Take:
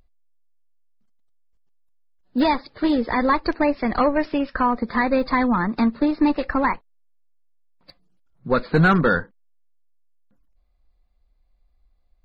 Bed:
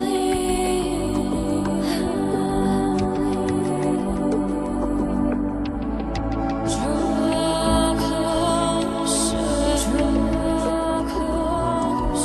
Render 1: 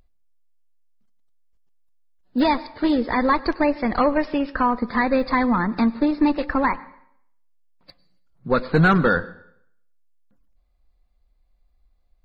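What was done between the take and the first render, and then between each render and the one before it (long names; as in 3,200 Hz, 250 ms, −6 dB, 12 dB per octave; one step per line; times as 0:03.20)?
dense smooth reverb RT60 0.67 s, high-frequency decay 0.95×, pre-delay 85 ms, DRR 19 dB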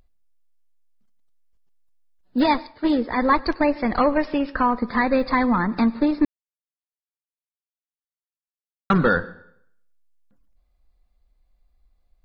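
0:02.46–0:03.61: multiband upward and downward expander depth 100%
0:06.25–0:08.90: silence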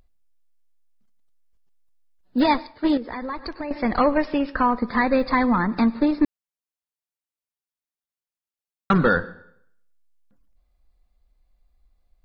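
0:02.97–0:03.71: downward compressor 4 to 1, threshold −29 dBFS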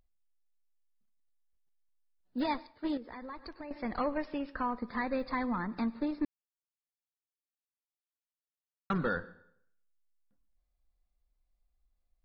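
level −13.5 dB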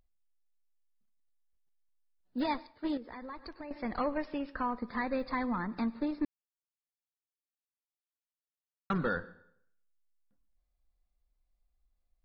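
no processing that can be heard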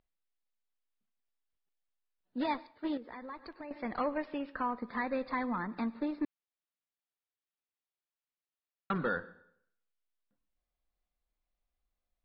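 low-pass filter 4,100 Hz 24 dB per octave
low-shelf EQ 110 Hz −11.5 dB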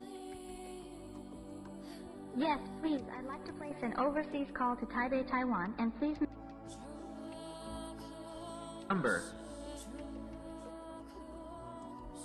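mix in bed −26 dB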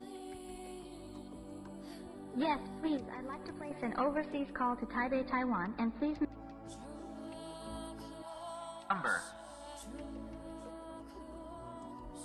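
0:00.85–0:01.28: parametric band 3,900 Hz +11.5 dB 0.22 octaves
0:08.22–0:09.83: low shelf with overshoot 580 Hz −8 dB, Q 3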